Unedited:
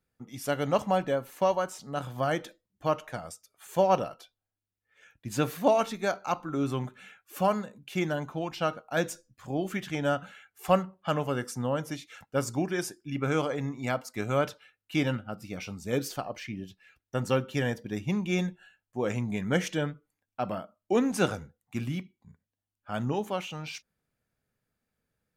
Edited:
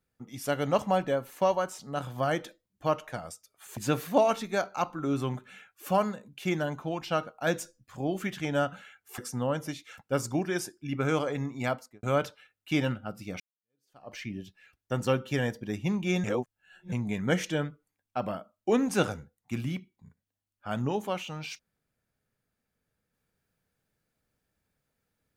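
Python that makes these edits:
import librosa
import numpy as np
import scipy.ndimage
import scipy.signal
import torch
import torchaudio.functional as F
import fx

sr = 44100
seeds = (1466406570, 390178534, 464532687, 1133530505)

y = fx.studio_fade_out(x, sr, start_s=13.94, length_s=0.32)
y = fx.edit(y, sr, fx.cut(start_s=3.77, length_s=1.5),
    fx.cut(start_s=10.68, length_s=0.73),
    fx.fade_in_span(start_s=15.63, length_s=0.73, curve='exp'),
    fx.reverse_span(start_s=18.47, length_s=0.68), tone=tone)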